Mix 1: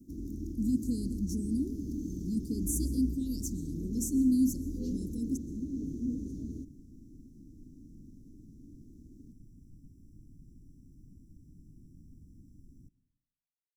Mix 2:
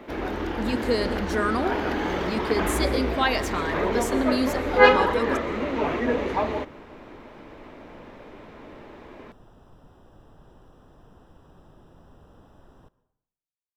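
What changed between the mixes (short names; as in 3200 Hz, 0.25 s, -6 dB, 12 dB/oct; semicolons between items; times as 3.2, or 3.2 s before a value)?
first sound +4.5 dB; master: remove Chebyshev band-stop 290–6000 Hz, order 4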